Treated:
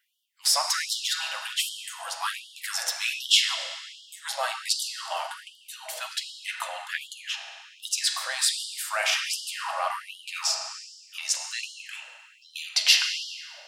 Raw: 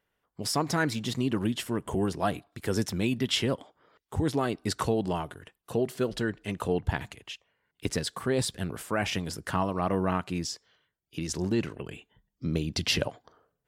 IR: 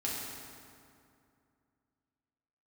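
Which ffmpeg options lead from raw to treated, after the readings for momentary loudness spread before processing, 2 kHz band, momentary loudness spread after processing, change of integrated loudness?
10 LU, +6.0 dB, 18 LU, +3.5 dB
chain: -filter_complex "[0:a]tiltshelf=f=1.2k:g=-7,asplit=2[a][b];[1:a]atrim=start_sample=2205,lowpass=7.5k,adelay=9[c];[b][c]afir=irnorm=-1:irlink=0,volume=-5dB[d];[a][d]amix=inputs=2:normalize=0,afftfilt=real='re*gte(b*sr/1024,490*pow(2900/490,0.5+0.5*sin(2*PI*1.3*pts/sr)))':imag='im*gte(b*sr/1024,490*pow(2900/490,0.5+0.5*sin(2*PI*1.3*pts/sr)))':win_size=1024:overlap=0.75,volume=2.5dB"

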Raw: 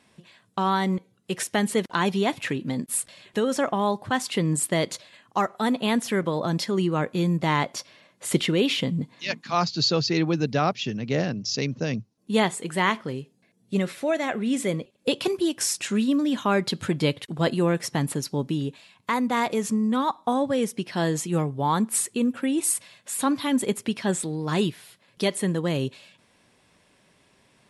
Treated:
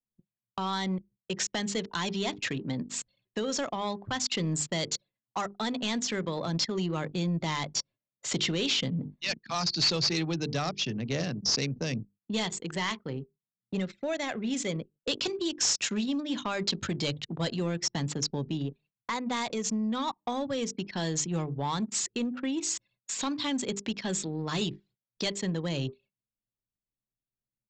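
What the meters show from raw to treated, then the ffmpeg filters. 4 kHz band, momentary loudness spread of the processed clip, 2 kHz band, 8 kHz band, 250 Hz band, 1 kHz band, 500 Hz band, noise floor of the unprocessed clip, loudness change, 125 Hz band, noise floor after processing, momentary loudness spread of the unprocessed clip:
0.0 dB, 8 LU, -6.0 dB, -2.5 dB, -7.5 dB, -8.5 dB, -8.5 dB, -63 dBFS, -5.5 dB, -5.5 dB, under -85 dBFS, 7 LU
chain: -filter_complex "[0:a]bandreject=f=50:t=h:w=6,bandreject=f=100:t=h:w=6,bandreject=f=150:t=h:w=6,bandreject=f=200:t=h:w=6,bandreject=f=250:t=h:w=6,bandreject=f=300:t=h:w=6,bandreject=f=350:t=h:w=6,bandreject=f=400:t=h:w=6,bandreject=f=450:t=h:w=6,agate=range=-14dB:threshold=-48dB:ratio=16:detection=peak,anlmdn=3.98,adynamicequalizer=threshold=0.00631:dfrequency=5700:dqfactor=0.76:tfrequency=5700:tqfactor=0.76:attack=5:release=100:ratio=0.375:range=3.5:mode=boostabove:tftype=bell,acrossover=split=130|3000[a][b][c];[b]acompressor=threshold=-33dB:ratio=2[d];[a][d][c]amix=inputs=3:normalize=0,aresample=16000,asoftclip=type=tanh:threshold=-21.5dB,aresample=44100"

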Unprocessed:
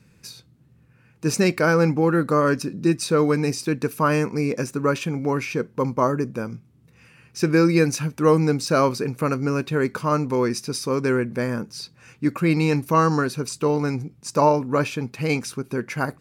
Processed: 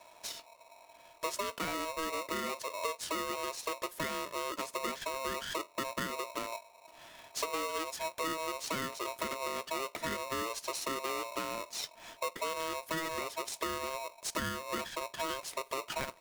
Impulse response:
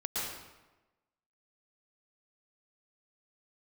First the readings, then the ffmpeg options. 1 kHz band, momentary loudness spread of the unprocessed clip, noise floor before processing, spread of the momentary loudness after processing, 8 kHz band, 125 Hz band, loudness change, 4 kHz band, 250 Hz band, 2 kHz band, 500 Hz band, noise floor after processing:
-11.0 dB, 10 LU, -56 dBFS, 6 LU, -7.0 dB, -28.5 dB, -14.5 dB, -4.5 dB, -22.0 dB, -11.0 dB, -17.0 dB, -59 dBFS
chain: -af "acompressor=threshold=-32dB:ratio=10,aeval=exprs='val(0)*sgn(sin(2*PI*800*n/s))':c=same,volume=-1.5dB"

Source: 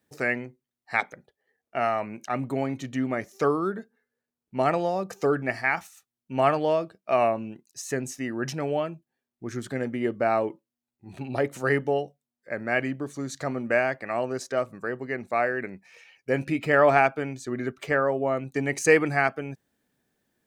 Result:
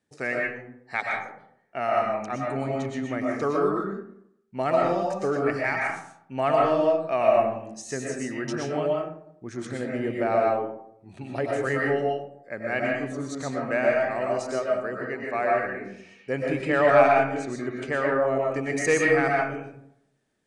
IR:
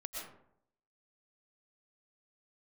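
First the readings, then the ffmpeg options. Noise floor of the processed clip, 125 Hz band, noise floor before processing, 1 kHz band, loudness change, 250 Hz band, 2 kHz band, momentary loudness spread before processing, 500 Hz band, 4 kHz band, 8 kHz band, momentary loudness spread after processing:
-62 dBFS, -1.0 dB, under -85 dBFS, +1.5 dB, +1.0 dB, +0.5 dB, 0.0 dB, 13 LU, +2.0 dB, 0.0 dB, -0.5 dB, 15 LU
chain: -filter_complex "[0:a]acontrast=28[a];[1:a]atrim=start_sample=2205,asetrate=43659,aresample=44100[b];[a][b]afir=irnorm=-1:irlink=0,aresample=22050,aresample=44100,volume=-3.5dB"

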